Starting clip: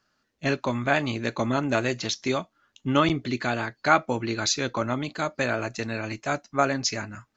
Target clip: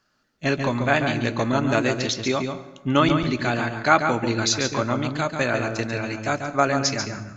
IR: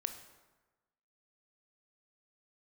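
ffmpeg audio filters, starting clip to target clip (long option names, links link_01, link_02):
-filter_complex "[0:a]asplit=2[link_01][link_02];[1:a]atrim=start_sample=2205,lowshelf=frequency=230:gain=8,adelay=140[link_03];[link_02][link_03]afir=irnorm=-1:irlink=0,volume=-6.5dB[link_04];[link_01][link_04]amix=inputs=2:normalize=0,volume=2.5dB"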